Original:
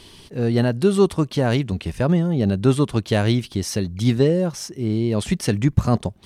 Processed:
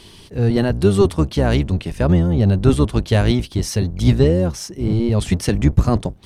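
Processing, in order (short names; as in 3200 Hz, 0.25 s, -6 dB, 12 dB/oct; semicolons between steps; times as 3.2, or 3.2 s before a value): octaver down 1 oct, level -1 dB; gain +1.5 dB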